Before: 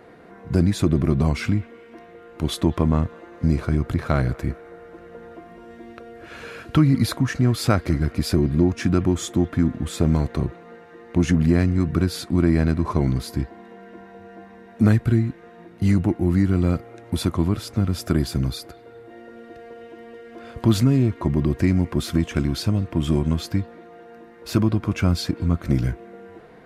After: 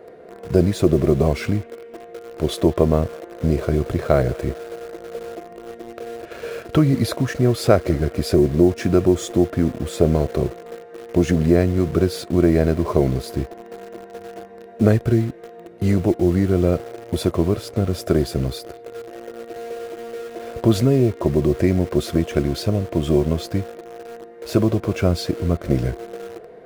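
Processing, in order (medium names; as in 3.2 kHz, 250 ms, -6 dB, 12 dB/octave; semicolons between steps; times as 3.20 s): high-order bell 500 Hz +11 dB 1.1 oct; in parallel at -9 dB: bit crusher 5-bit; on the sum: trim -3 dB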